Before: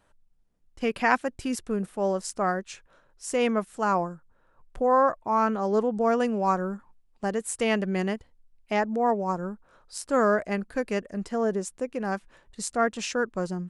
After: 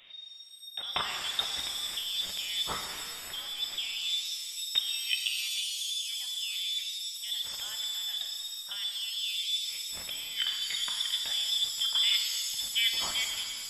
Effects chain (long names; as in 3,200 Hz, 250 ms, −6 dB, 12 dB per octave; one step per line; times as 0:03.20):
fade-out on the ending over 3.36 s
dynamic equaliser 160 Hz, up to +8 dB, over −42 dBFS, Q 0.78
compressor whose output falls as the input rises −35 dBFS, ratio −1
voice inversion scrambler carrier 3,700 Hz
reverb with rising layers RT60 1.9 s, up +7 semitones, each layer −2 dB, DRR 3.5 dB